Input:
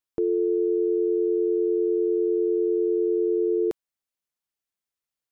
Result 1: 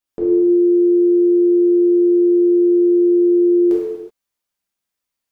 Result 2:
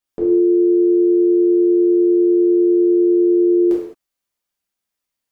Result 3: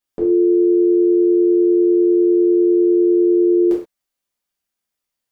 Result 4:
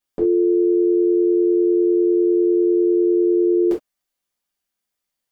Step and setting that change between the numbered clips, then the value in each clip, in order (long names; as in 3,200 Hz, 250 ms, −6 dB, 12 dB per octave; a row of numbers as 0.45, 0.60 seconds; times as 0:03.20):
reverb whose tail is shaped and stops, gate: 400, 240, 150, 90 milliseconds